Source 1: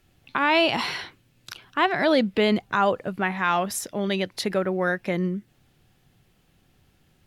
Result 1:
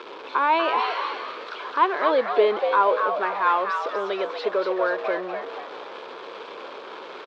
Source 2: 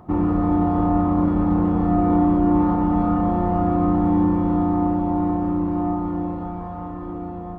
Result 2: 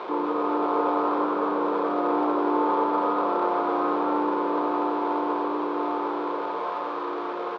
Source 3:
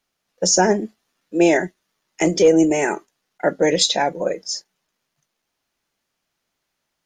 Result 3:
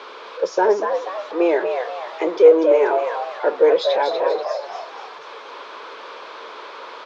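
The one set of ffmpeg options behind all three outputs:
ffmpeg -i in.wav -filter_complex "[0:a]aeval=exprs='val(0)+0.5*0.0562*sgn(val(0))':channel_layout=same,highpass=frequency=400:width=0.5412,highpass=frequency=400:width=1.3066,equalizer=frequency=450:width_type=q:width=4:gain=8,equalizer=frequency=720:width_type=q:width=4:gain=-9,equalizer=frequency=1000:width_type=q:width=4:gain=8,equalizer=frequency=1900:width_type=q:width=4:gain=-10,equalizer=frequency=2800:width_type=q:width=4:gain=-8,lowpass=frequency=3200:width=0.5412,lowpass=frequency=3200:width=1.3066,asplit=6[link_01][link_02][link_03][link_04][link_05][link_06];[link_02]adelay=242,afreqshift=100,volume=-6dB[link_07];[link_03]adelay=484,afreqshift=200,volume=-13.7dB[link_08];[link_04]adelay=726,afreqshift=300,volume=-21.5dB[link_09];[link_05]adelay=968,afreqshift=400,volume=-29.2dB[link_10];[link_06]adelay=1210,afreqshift=500,volume=-37dB[link_11];[link_01][link_07][link_08][link_09][link_10][link_11]amix=inputs=6:normalize=0,volume=-1dB" out.wav

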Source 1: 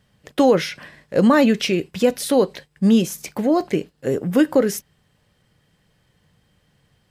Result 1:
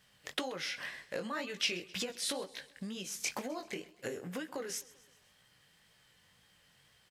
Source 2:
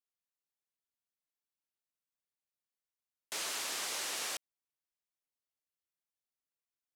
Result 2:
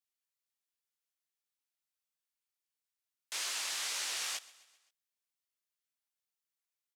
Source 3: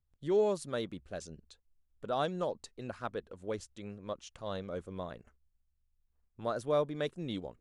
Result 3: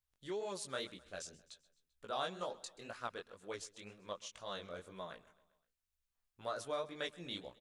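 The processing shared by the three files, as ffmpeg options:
ffmpeg -i in.wav -filter_complex "[0:a]acrossover=split=9500[link_01][link_02];[link_02]acompressor=threshold=-52dB:ratio=4:attack=1:release=60[link_03];[link_01][link_03]amix=inputs=2:normalize=0,flanger=delay=15.5:depth=7.8:speed=2,acompressor=threshold=-31dB:ratio=16,tiltshelf=frequency=700:gain=-8,asplit=2[link_04][link_05];[link_05]aecho=0:1:130|260|390|520:0.0944|0.051|0.0275|0.0149[link_06];[link_04][link_06]amix=inputs=2:normalize=0,volume=-2.5dB" out.wav

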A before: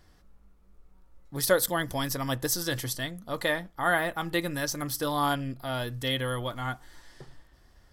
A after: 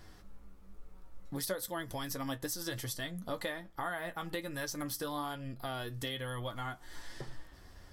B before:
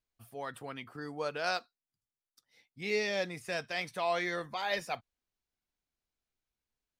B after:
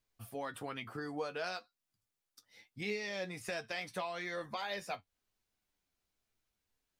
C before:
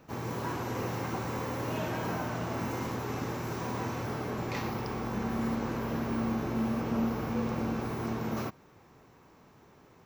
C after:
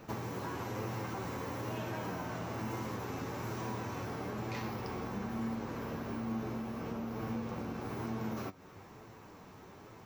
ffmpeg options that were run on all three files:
ffmpeg -i in.wav -af "acompressor=threshold=-42dB:ratio=5,flanger=delay=9:depth=2:regen=48:speed=1.1:shape=sinusoidal,volume=9dB" out.wav

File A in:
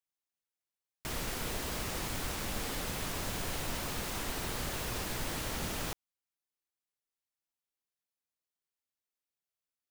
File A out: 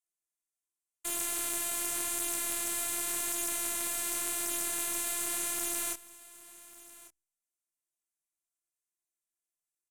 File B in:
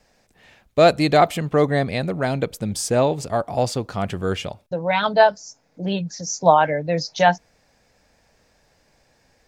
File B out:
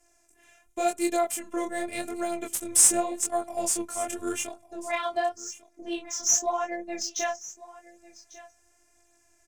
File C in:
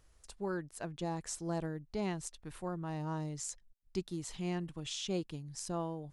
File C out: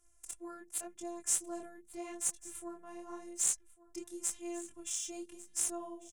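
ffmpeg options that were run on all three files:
ffmpeg -i in.wav -filter_complex "[0:a]equalizer=frequency=2300:width=7.7:gain=3,bandreject=frequency=50:width_type=h:width=6,bandreject=frequency=100:width_type=h:width=6,bandreject=frequency=150:width_type=h:width=6,bandreject=frequency=200:width_type=h:width=6,acrossover=split=110[link_01][link_02];[link_01]acompressor=threshold=-54dB:ratio=6[link_03];[link_02]alimiter=limit=-10.5dB:level=0:latency=1:release=492[link_04];[link_03][link_04]amix=inputs=2:normalize=0,afftfilt=real='hypot(re,im)*cos(PI*b)':imag='0':win_size=512:overlap=0.75,flanger=delay=20:depth=7.5:speed=0.88,aexciter=amount=8.2:drive=9.9:freq=6700,adynamicsmooth=sensitivity=5:basefreq=5200,aecho=1:1:1147:0.112" out.wav

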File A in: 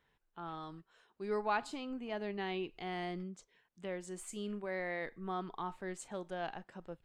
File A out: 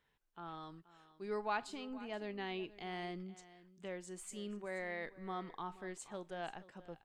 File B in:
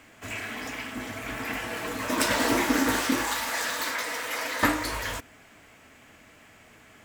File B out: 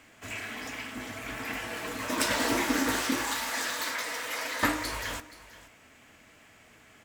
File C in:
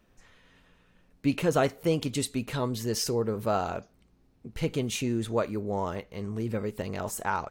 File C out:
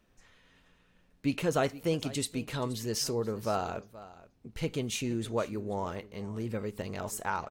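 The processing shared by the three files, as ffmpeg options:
ffmpeg -i in.wav -filter_complex "[0:a]equalizer=frequency=5200:width_type=o:width=2.7:gain=2.5,asplit=2[link_01][link_02];[link_02]aecho=0:1:477:0.133[link_03];[link_01][link_03]amix=inputs=2:normalize=0,volume=-4dB" out.wav

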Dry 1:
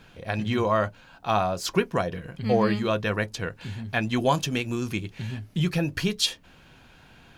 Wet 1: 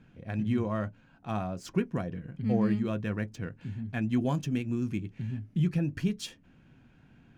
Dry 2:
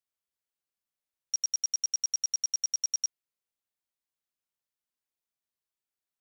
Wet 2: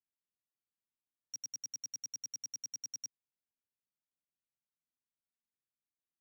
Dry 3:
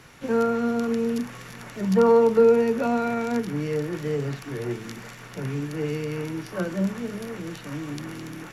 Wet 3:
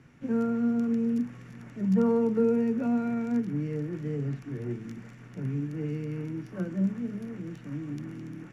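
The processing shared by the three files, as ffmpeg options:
ffmpeg -i in.wav -af "adynamicsmooth=sensitivity=6.5:basefreq=6000,equalizer=frequency=125:width_type=o:width=1:gain=6,equalizer=frequency=250:width_type=o:width=1:gain=8,equalizer=frequency=500:width_type=o:width=1:gain=-3,equalizer=frequency=1000:width_type=o:width=1:gain=-5,equalizer=frequency=4000:width_type=o:width=1:gain=-9,volume=-8.5dB" out.wav

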